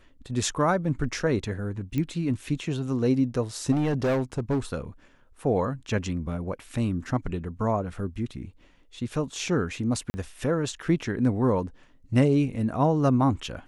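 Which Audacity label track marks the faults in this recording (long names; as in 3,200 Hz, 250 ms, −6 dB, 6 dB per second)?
1.980000	1.980000	click −17 dBFS
3.710000	4.590000	clipping −21 dBFS
10.100000	10.140000	drop-out 40 ms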